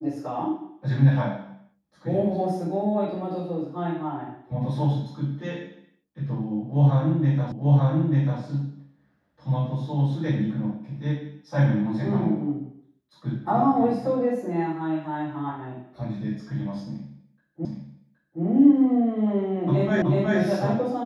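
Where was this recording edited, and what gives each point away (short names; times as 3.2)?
7.52 repeat of the last 0.89 s
17.65 repeat of the last 0.77 s
20.02 repeat of the last 0.37 s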